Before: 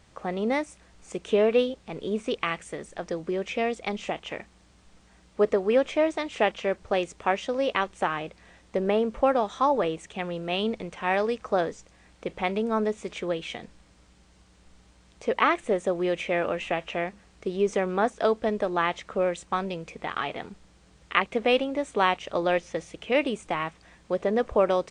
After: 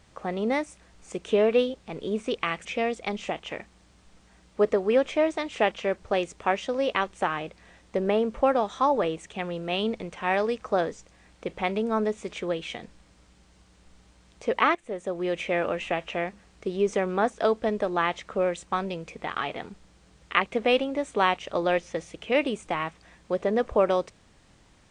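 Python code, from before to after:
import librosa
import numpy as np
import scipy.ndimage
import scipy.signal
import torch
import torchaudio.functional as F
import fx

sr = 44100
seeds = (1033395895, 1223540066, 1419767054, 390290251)

y = fx.edit(x, sr, fx.cut(start_s=2.65, length_s=0.8),
    fx.fade_in_from(start_s=15.55, length_s=0.68, floor_db=-15.5), tone=tone)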